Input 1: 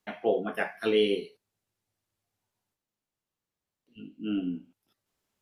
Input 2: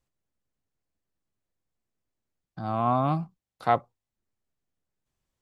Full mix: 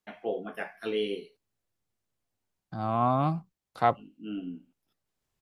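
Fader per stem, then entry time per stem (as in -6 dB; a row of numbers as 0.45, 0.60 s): -6.0, -1.0 dB; 0.00, 0.15 s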